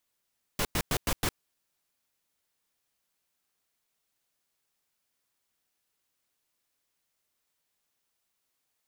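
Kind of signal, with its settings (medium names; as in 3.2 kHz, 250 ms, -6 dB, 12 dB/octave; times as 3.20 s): noise bursts pink, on 0.06 s, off 0.10 s, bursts 5, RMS -27.5 dBFS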